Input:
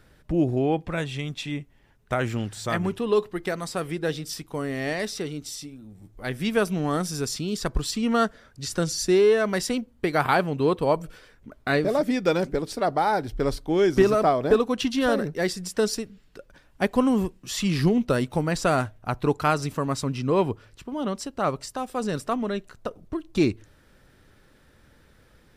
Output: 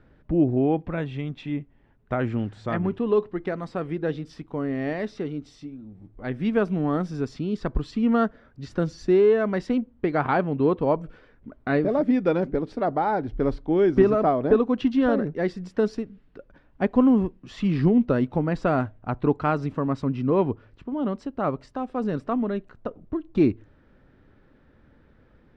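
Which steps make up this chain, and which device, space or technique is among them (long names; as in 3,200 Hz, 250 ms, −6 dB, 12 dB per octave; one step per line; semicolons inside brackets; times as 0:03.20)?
phone in a pocket (low-pass filter 3,400 Hz 12 dB per octave; parametric band 260 Hz +4.5 dB 0.63 octaves; high-shelf EQ 2,200 Hz −11 dB)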